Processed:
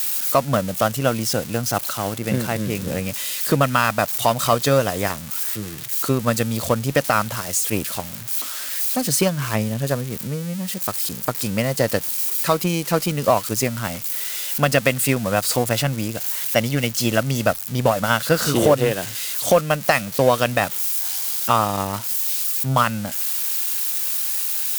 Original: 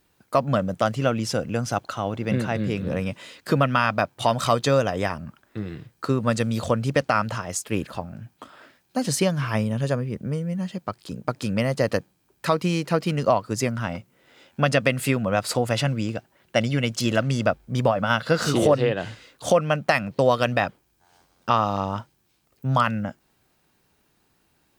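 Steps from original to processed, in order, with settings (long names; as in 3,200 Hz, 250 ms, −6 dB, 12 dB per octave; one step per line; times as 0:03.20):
spike at every zero crossing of −19 dBFS
harmonic generator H 7 −27 dB, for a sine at −6.5 dBFS
level +3 dB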